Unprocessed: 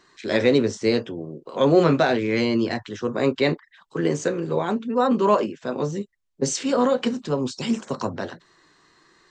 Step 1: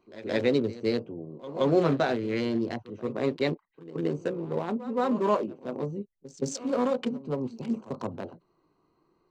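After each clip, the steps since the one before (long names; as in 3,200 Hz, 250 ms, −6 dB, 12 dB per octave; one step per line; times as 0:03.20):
adaptive Wiener filter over 25 samples
backwards echo 173 ms −16 dB
level −6 dB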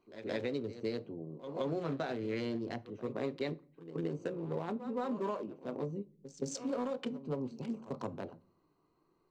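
downward compressor 10 to 1, threshold −27 dBFS, peak gain reduction 10.5 dB
rectangular room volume 470 cubic metres, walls furnished, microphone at 0.31 metres
level −5 dB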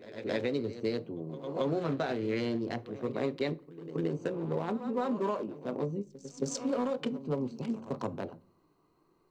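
echo ahead of the sound 272 ms −18 dB
level +4.5 dB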